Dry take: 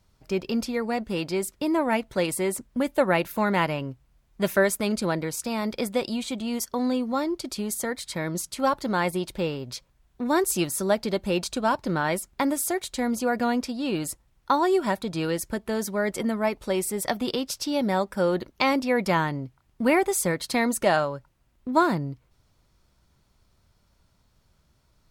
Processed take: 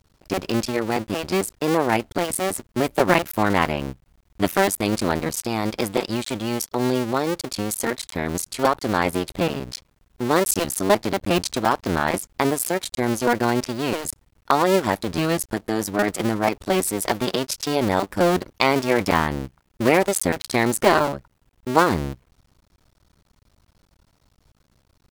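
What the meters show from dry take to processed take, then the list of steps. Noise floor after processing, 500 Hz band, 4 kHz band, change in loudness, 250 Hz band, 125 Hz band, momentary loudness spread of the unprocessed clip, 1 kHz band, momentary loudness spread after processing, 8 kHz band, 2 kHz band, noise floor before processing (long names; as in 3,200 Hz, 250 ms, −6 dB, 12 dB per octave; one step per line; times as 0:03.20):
−65 dBFS, +3.5 dB, +5.0 dB, +3.5 dB, +2.5 dB, +5.5 dB, 8 LU, +4.5 dB, 8 LU, +4.0 dB, +4.0 dB, −66 dBFS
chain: sub-harmonics by changed cycles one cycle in 2, muted
level +6.5 dB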